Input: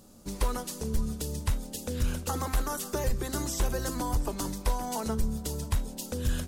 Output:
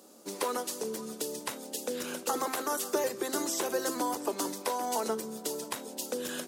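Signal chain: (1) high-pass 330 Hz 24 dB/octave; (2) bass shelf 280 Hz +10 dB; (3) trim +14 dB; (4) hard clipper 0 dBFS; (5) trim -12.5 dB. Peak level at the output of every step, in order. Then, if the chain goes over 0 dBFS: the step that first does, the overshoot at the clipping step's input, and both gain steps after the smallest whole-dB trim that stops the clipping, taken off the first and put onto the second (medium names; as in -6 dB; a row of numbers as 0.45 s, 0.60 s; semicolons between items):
-19.5 dBFS, -17.5 dBFS, -3.5 dBFS, -3.5 dBFS, -16.0 dBFS; nothing clips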